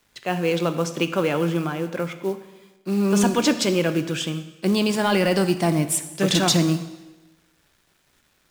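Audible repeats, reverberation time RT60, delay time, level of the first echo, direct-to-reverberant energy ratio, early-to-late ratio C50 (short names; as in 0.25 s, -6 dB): none, 1.1 s, none, none, 9.0 dB, 11.5 dB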